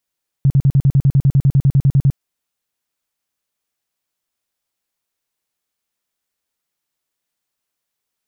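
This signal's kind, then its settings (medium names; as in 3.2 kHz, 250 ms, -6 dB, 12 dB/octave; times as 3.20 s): tone bursts 137 Hz, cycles 7, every 0.10 s, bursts 17, -8 dBFS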